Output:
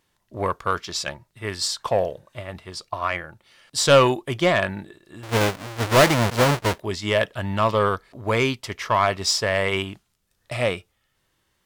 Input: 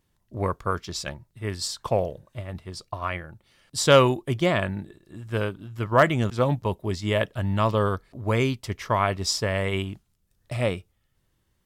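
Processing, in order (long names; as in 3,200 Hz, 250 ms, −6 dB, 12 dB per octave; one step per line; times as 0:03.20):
0:05.23–0:06.80: each half-wave held at its own peak
mid-hump overdrive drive 13 dB, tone 7,100 Hz, clips at −6 dBFS
harmonic and percussive parts rebalanced harmonic +3 dB
level −2 dB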